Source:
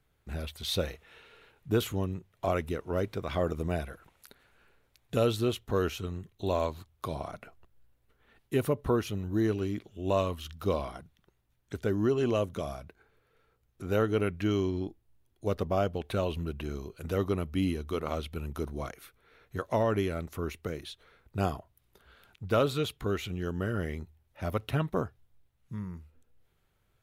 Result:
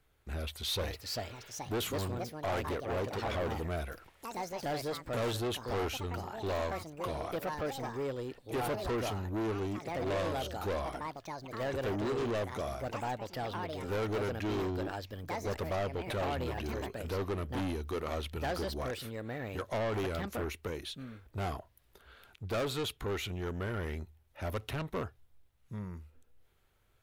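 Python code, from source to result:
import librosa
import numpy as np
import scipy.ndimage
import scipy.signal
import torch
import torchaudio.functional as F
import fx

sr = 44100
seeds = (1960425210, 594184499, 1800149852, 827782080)

y = fx.echo_pitch(x, sr, ms=555, semitones=4, count=3, db_per_echo=-6.0)
y = 10.0 ** (-31.0 / 20.0) * np.tanh(y / 10.0 ** (-31.0 / 20.0))
y = fx.peak_eq(y, sr, hz=160.0, db=-6.0, octaves=1.1)
y = F.gain(torch.from_numpy(y), 2.0).numpy()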